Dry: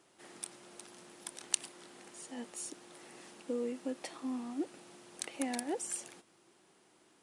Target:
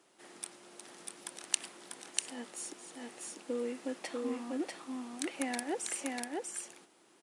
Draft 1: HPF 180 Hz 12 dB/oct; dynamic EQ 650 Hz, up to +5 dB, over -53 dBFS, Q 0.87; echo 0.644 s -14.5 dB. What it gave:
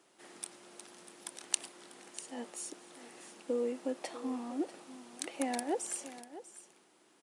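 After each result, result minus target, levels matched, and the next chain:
echo-to-direct -12 dB; 2000 Hz band -5.0 dB
HPF 180 Hz 12 dB/oct; dynamic EQ 650 Hz, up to +5 dB, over -53 dBFS, Q 0.87; echo 0.644 s -2.5 dB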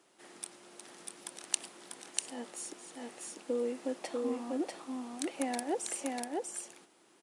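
2000 Hz band -4.0 dB
HPF 180 Hz 12 dB/oct; dynamic EQ 1800 Hz, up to +5 dB, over -53 dBFS, Q 0.87; echo 0.644 s -2.5 dB

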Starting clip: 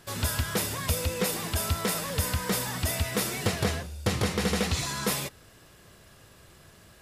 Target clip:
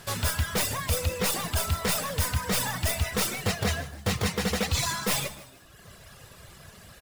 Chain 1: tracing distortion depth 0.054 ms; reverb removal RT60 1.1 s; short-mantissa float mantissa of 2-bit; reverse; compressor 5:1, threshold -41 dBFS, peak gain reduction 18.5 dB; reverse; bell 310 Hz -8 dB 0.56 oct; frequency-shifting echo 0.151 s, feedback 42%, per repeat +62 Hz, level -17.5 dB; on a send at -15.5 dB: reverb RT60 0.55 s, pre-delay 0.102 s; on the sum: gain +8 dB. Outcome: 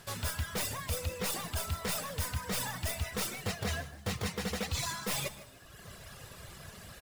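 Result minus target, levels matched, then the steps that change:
compressor: peak gain reduction +8 dB
change: compressor 5:1, threshold -31 dBFS, peak gain reduction 10.5 dB

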